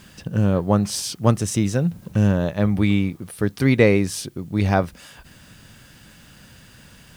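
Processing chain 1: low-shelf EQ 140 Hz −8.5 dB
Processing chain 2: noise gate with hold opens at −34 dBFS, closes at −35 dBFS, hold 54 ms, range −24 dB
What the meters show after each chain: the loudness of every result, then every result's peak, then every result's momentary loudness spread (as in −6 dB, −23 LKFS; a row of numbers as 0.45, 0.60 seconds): −23.0, −21.0 LKFS; −3.0, −2.0 dBFS; 11, 10 LU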